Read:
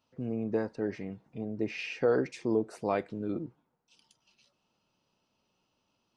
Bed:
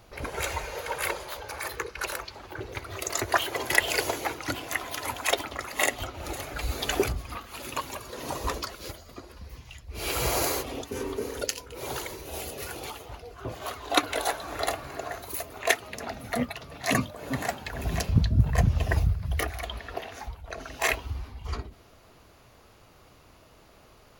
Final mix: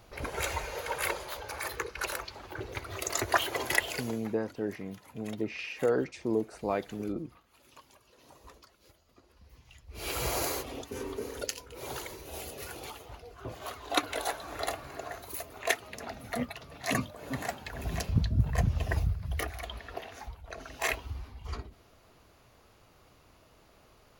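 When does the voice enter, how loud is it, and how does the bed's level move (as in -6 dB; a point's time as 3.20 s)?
3.80 s, -1.0 dB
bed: 3.67 s -2 dB
4.44 s -23 dB
8.80 s -23 dB
10.08 s -5 dB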